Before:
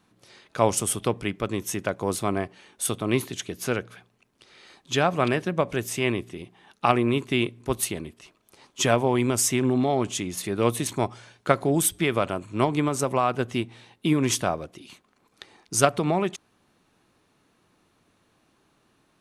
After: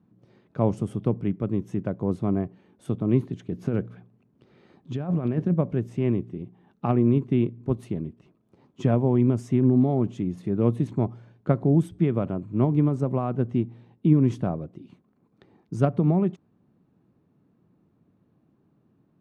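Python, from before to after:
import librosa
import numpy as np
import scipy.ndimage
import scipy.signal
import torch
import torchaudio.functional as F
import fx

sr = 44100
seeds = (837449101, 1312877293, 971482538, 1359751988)

y = fx.over_compress(x, sr, threshold_db=-27.0, ratio=-1.0, at=(3.52, 5.54))
y = fx.bandpass_q(y, sr, hz=160.0, q=1.2)
y = F.gain(torch.from_numpy(y), 7.5).numpy()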